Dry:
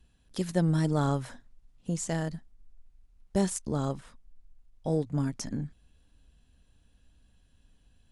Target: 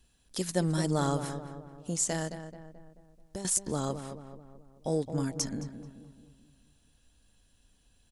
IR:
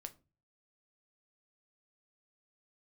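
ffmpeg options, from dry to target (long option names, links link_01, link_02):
-filter_complex "[0:a]asettb=1/sr,asplit=3[link_01][link_02][link_03];[link_01]atrim=end=2.274[link_04];[link_02]atrim=start=2.27:end=3.45,asetpts=PTS-STARTPTS,afade=type=in:duration=0.004:curve=qsin,afade=type=out:start_time=1.176:duration=0.004:curve=qsin,acompressor=threshold=-34dB:ratio=12[link_05];[link_03]atrim=start=3.446[link_06];[link_04][link_05]acrossfade=duration=0.004:curve1=hsin:curve2=qsin[link_07];[link_07][link_06]acrossfade=duration=0.004:curve1=qsin:curve2=hsin,bass=frequency=250:gain=-5,treble=frequency=4000:gain=8,asplit=2[link_08][link_09];[link_09]adelay=217,lowpass=frequency=1800:poles=1,volume=-9dB,asplit=2[link_10][link_11];[link_11]adelay=217,lowpass=frequency=1800:poles=1,volume=0.51,asplit=2[link_12][link_13];[link_13]adelay=217,lowpass=frequency=1800:poles=1,volume=0.51,asplit=2[link_14][link_15];[link_15]adelay=217,lowpass=frequency=1800:poles=1,volume=0.51,asplit=2[link_16][link_17];[link_17]adelay=217,lowpass=frequency=1800:poles=1,volume=0.51,asplit=2[link_18][link_19];[link_19]adelay=217,lowpass=frequency=1800:poles=1,volume=0.51[link_20];[link_08][link_10][link_12][link_14][link_16][link_18][link_20]amix=inputs=7:normalize=0"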